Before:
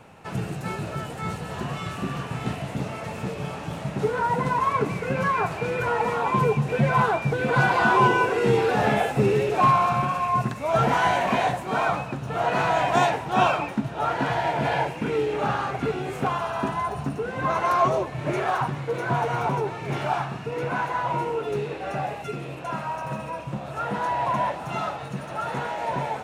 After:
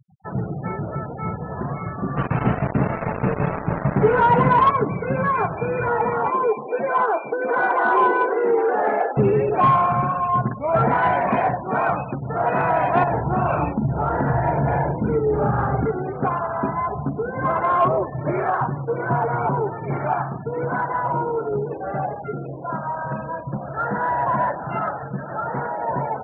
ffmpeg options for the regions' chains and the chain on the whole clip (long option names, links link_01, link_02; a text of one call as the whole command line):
ffmpeg -i in.wav -filter_complex "[0:a]asettb=1/sr,asplit=3[link_01][link_02][link_03];[link_01]atrim=end=2.174[link_04];[link_02]atrim=start=2.17:end=4.71,asetpts=PTS-STARTPTS,afade=type=in:duration=0.004:curve=qsin,afade=type=out:start_time=2.536:duration=0.004:curve=qsin,acontrast=50,acrusher=bits=3:mix=0:aa=0.5[link_05];[link_03]atrim=start=4.706[link_06];[link_04][link_05]acrossfade=duration=0.004:curve1=hsin:curve2=qsin[link_07];[link_07][link_06]acrossfade=duration=0.004:curve1=qsin:curve2=hsin,asettb=1/sr,asplit=3[link_08][link_09][link_10];[link_08]atrim=end=6.304[link_11];[link_09]atrim=start=6.3:end=9.17,asetpts=PTS-STARTPTS,afade=type=in:duration=0.004:curve=qsin,afade=type=out:start_time=2.866:duration=0.004:curve=qsin,highpass=frequency=310:width=0.5412,highpass=frequency=310:width=1.3066,aemphasis=mode=reproduction:type=75kf[link_12];[link_10]atrim=start=9.166[link_13];[link_11][link_12]acrossfade=duration=0.004:curve1=hsin:curve2=qsin[link_14];[link_14][link_13]acrossfade=duration=0.004:curve1=qsin:curve2=hsin,asettb=1/sr,asplit=3[link_15][link_16][link_17];[link_15]atrim=end=13.034[link_18];[link_16]atrim=start=13.03:end=15.85,asetpts=PTS-STARTPTS,afade=type=in:duration=0.004:curve=qsin,afade=type=out:start_time=2.816:duration=0.004:curve=qsin,aemphasis=mode=reproduction:type=bsi,acompressor=threshold=-20dB:ratio=16:attack=3.2:release=140:knee=1:detection=peak,asplit=2[link_19][link_20];[link_20]adelay=42,volume=-4dB[link_21];[link_19][link_21]amix=inputs=2:normalize=0,atrim=end_sample=124362[link_22];[link_17]atrim=start=15.846[link_23];[link_18][link_22]acrossfade=duration=0.004:curve1=hsin:curve2=qsin[link_24];[link_24][link_23]acrossfade=duration=0.004:curve1=qsin:curve2=hsin,asettb=1/sr,asplit=3[link_25][link_26][link_27];[link_25]atrim=end=22.964[link_28];[link_26]atrim=start=22.96:end=25.37,asetpts=PTS-STARTPTS,afade=type=in:duration=0.004:curve=qsin,afade=type=out:start_time=2.406:duration=0.004:curve=qsin,lowpass=5000,equalizer=frequency=1600:width_type=o:width=0.35:gain=7[link_29];[link_27]atrim=start=25.366[link_30];[link_28][link_29]acrossfade=duration=0.004:curve1=hsin:curve2=qsin[link_31];[link_31][link_30]acrossfade=duration=0.004:curve1=qsin:curve2=hsin,lowpass=1800,afftfilt=real='re*gte(hypot(re,im),0.0224)':imag='im*gte(hypot(re,im),0.0224)':win_size=1024:overlap=0.75,acontrast=87,volume=-3.5dB" out.wav